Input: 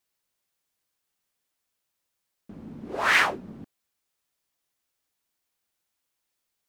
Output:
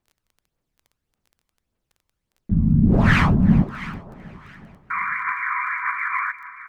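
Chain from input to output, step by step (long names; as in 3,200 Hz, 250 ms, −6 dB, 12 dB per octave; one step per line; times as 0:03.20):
0:04.90–0:06.32: sound drawn into the spectrogram noise 970–2,400 Hz −26 dBFS
spectral tilt −3.5 dB per octave
delay that swaps between a low-pass and a high-pass 335 ms, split 820 Hz, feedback 51%, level −9 dB
phase shifter 1.7 Hz, delay 1 ms, feedback 45%
0:02.51–0:03.62: low shelf with overshoot 270 Hz +12 dB, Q 1.5
repeating echo 381 ms, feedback 54%, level −22 dB
surface crackle 14 per second −43 dBFS
level +2 dB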